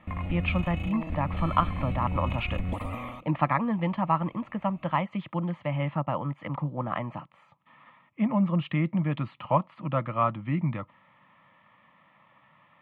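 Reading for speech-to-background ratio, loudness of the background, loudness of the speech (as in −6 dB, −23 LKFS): 4.0 dB, −33.5 LKFS, −29.5 LKFS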